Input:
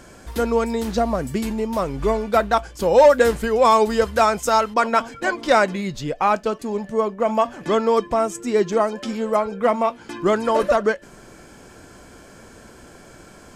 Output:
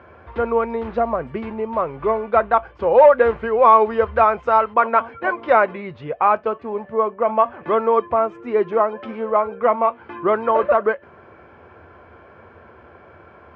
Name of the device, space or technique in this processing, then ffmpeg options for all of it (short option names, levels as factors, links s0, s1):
bass cabinet: -af "highpass=f=78:w=0.5412,highpass=f=78:w=1.3066,equalizer=f=81:t=q:w=4:g=6,equalizer=f=130:t=q:w=4:g=-8,equalizer=f=190:t=q:w=4:g=-10,equalizer=f=280:t=q:w=4:g=-10,equalizer=f=1100:t=q:w=4:g=4,equalizer=f=1800:t=q:w=4:g=-4,lowpass=f=2300:w=0.5412,lowpass=f=2300:w=1.3066,volume=1.19"